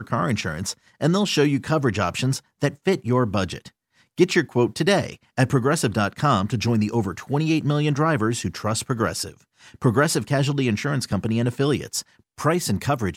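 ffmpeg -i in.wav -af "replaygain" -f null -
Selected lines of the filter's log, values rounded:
track_gain = +3.2 dB
track_peak = 0.436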